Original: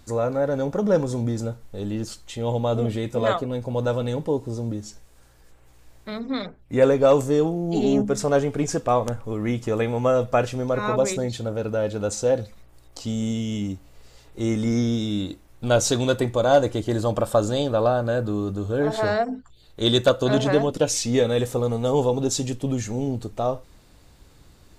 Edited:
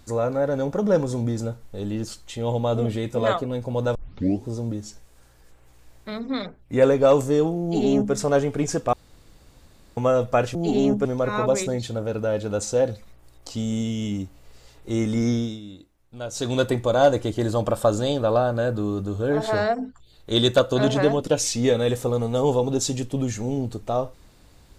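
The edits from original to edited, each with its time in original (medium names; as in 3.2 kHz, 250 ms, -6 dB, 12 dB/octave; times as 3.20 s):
3.95 s: tape start 0.52 s
7.63–8.13 s: copy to 10.55 s
8.93–9.97 s: room tone
14.84–16.08 s: dip -14 dB, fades 0.27 s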